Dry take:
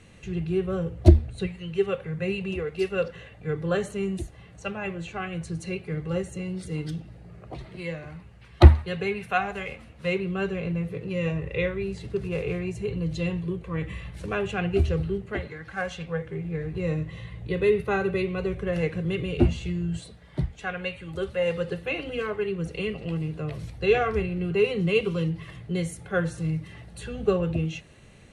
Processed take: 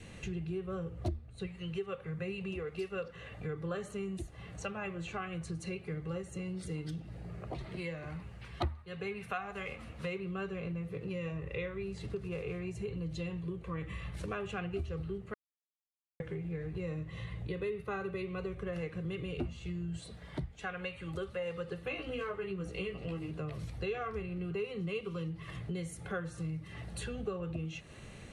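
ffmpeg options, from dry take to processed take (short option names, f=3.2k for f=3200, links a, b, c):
-filter_complex "[0:a]asettb=1/sr,asplit=3[a][b][c];[a]atrim=end=21.854[d];[b]atrim=start=21.85:end=23.31,asetpts=PTS-STARTPTS,afade=t=in:d=0.004:c=qsin,afade=t=out:st=1.456:d=0.004:c=qsin,asplit=2[e][f];[f]adelay=16,volume=-3dB[g];[e][g]amix=inputs=2:normalize=0,atrim=end_sample=64386[h];[c]atrim=start=23.306[i];[d][h]acrossfade=d=0.004:c1=hsin:c2=qsin[j];[j][i]acrossfade=d=0.004:c1=qsin:c2=hsin,asplit=3[k][l][m];[k]atrim=end=15.34,asetpts=PTS-STARTPTS,afade=t=out:st=15.336:d=0.004:c=hsin[n];[l]atrim=start=15.34:end=16.2,asetpts=PTS-STARTPTS,volume=0[o];[m]atrim=start=16.2,asetpts=PTS-STARTPTS,afade=t=in:d=0.004:c=hsin[p];[n][o][p]concat=n=3:v=0:a=1,adynamicequalizer=threshold=0.002:dfrequency=1200:dqfactor=6.1:tfrequency=1200:tqfactor=6.1:attack=5:release=100:ratio=0.375:range=4:mode=boostabove:tftype=bell,acompressor=threshold=-40dB:ratio=4,volume=2dB"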